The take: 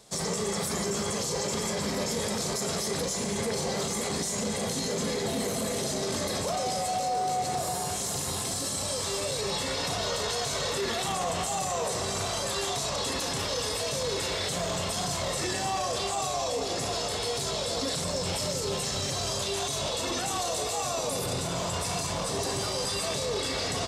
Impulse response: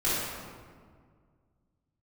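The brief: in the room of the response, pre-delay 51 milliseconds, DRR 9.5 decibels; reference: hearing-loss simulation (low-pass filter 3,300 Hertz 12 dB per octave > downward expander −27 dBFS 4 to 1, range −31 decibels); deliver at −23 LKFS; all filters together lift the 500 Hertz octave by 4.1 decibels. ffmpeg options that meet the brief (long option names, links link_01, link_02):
-filter_complex "[0:a]equalizer=frequency=500:width_type=o:gain=5,asplit=2[link_01][link_02];[1:a]atrim=start_sample=2205,adelay=51[link_03];[link_02][link_03]afir=irnorm=-1:irlink=0,volume=-21.5dB[link_04];[link_01][link_04]amix=inputs=2:normalize=0,lowpass=3300,agate=range=-31dB:threshold=-27dB:ratio=4,volume=6dB"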